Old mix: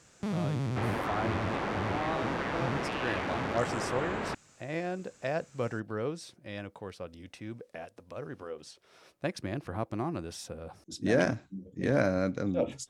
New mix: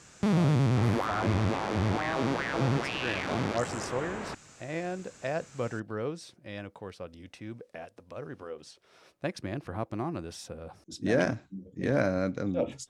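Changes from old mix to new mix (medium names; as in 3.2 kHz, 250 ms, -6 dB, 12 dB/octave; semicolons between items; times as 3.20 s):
first sound +7.5 dB; second sound -3.5 dB; master: add treble shelf 10 kHz -4.5 dB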